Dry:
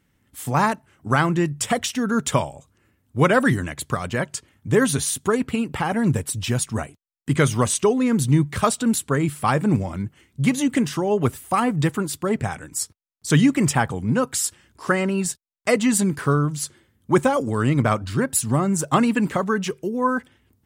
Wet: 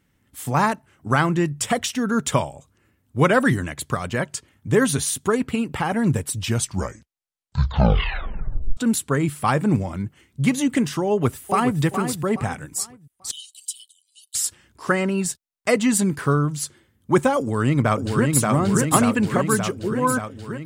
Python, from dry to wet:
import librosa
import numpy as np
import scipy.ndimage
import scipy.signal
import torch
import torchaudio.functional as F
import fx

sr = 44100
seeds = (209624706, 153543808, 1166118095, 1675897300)

y = fx.echo_throw(x, sr, start_s=11.07, length_s=0.74, ms=420, feedback_pct=35, wet_db=-8.0)
y = fx.cheby_ripple_highpass(y, sr, hz=2900.0, ripple_db=9, at=(13.31, 14.35))
y = fx.echo_throw(y, sr, start_s=17.39, length_s=1.04, ms=580, feedback_pct=70, wet_db=-2.0)
y = fx.edit(y, sr, fx.tape_stop(start_s=6.42, length_s=2.35), tone=tone)